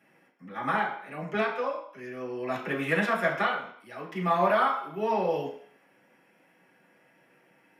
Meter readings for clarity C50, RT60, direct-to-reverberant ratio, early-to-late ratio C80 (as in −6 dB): 6.5 dB, 0.60 s, −6.5 dB, 9.5 dB